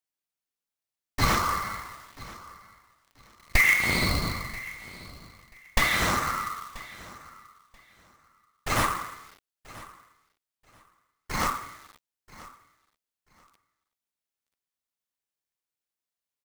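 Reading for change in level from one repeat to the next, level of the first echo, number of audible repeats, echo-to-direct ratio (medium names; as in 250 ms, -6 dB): -14.0 dB, -19.5 dB, 2, -19.5 dB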